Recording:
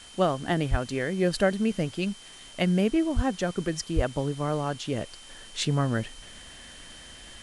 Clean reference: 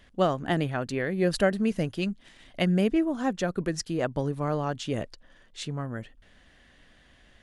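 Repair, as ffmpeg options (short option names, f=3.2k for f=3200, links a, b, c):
-filter_complex "[0:a]bandreject=f=3.1k:w=30,asplit=3[a][b][c];[a]afade=t=out:st=0.7:d=0.02[d];[b]highpass=f=140:w=0.5412,highpass=f=140:w=1.3066,afade=t=in:st=0.7:d=0.02,afade=t=out:st=0.82:d=0.02[e];[c]afade=t=in:st=0.82:d=0.02[f];[d][e][f]amix=inputs=3:normalize=0,asplit=3[g][h][i];[g]afade=t=out:st=3.15:d=0.02[j];[h]highpass=f=140:w=0.5412,highpass=f=140:w=1.3066,afade=t=in:st=3.15:d=0.02,afade=t=out:st=3.27:d=0.02[k];[i]afade=t=in:st=3.27:d=0.02[l];[j][k][l]amix=inputs=3:normalize=0,asplit=3[m][n][o];[m]afade=t=out:st=3.95:d=0.02[p];[n]highpass=f=140:w=0.5412,highpass=f=140:w=1.3066,afade=t=in:st=3.95:d=0.02,afade=t=out:st=4.07:d=0.02[q];[o]afade=t=in:st=4.07:d=0.02[r];[p][q][r]amix=inputs=3:normalize=0,afwtdn=0.004,asetnsamples=n=441:p=0,asendcmd='5.29 volume volume -8dB',volume=0dB"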